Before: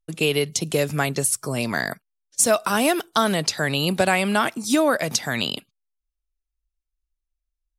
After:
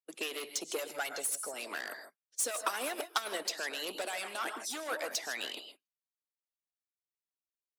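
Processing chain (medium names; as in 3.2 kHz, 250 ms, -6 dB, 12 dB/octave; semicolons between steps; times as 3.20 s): 0.78–1.54 s: comb 1.4 ms, depth 67%; gated-style reverb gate 180 ms rising, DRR 9 dB; saturation -19.5 dBFS, distortion -9 dB; harmonic-percussive split harmonic -12 dB; 2.60–3.45 s: transient shaper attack +7 dB, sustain -5 dB; high-pass 320 Hz 24 dB/octave; trim -7 dB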